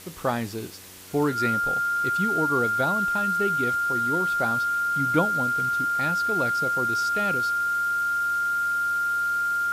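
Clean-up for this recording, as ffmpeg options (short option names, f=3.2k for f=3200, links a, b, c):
-af "bandreject=f=93.5:t=h:w=4,bandreject=f=187:t=h:w=4,bandreject=f=280.5:t=h:w=4,bandreject=f=374:t=h:w=4,bandreject=f=467.5:t=h:w=4,bandreject=f=1.4k:w=30,afwtdn=0.0063"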